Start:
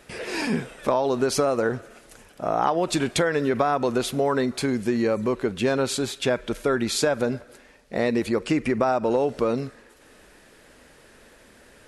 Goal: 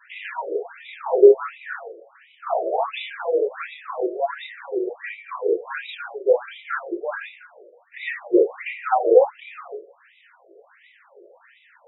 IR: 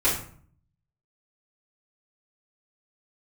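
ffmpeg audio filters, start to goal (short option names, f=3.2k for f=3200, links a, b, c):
-filter_complex "[0:a]aphaser=in_gain=1:out_gain=1:delay=4.4:decay=0.49:speed=0.83:type=sinusoidal[a];[1:a]atrim=start_sample=2205[b];[a][b]afir=irnorm=-1:irlink=0,afftfilt=real='re*between(b*sr/1024,460*pow(2800/460,0.5+0.5*sin(2*PI*1.4*pts/sr))/1.41,460*pow(2800/460,0.5+0.5*sin(2*PI*1.4*pts/sr))*1.41)':imag='im*between(b*sr/1024,460*pow(2800/460,0.5+0.5*sin(2*PI*1.4*pts/sr))/1.41,460*pow(2800/460,0.5+0.5*sin(2*PI*1.4*pts/sr))*1.41)':win_size=1024:overlap=0.75,volume=-8.5dB"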